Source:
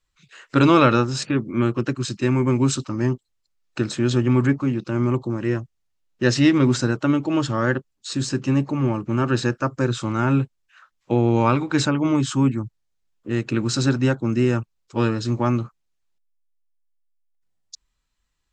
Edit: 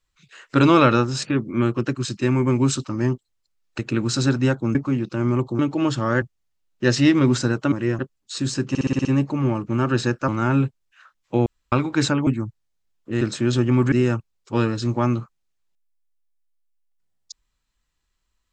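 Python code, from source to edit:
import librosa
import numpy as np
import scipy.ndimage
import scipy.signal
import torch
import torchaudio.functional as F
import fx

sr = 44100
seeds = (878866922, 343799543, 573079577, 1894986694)

y = fx.edit(x, sr, fx.swap(start_s=3.79, length_s=0.71, other_s=13.39, other_length_s=0.96),
    fx.swap(start_s=5.34, length_s=0.27, other_s=7.11, other_length_s=0.63),
    fx.stutter(start_s=8.44, slice_s=0.06, count=7),
    fx.cut(start_s=9.67, length_s=0.38),
    fx.room_tone_fill(start_s=11.23, length_s=0.26),
    fx.cut(start_s=12.04, length_s=0.41), tone=tone)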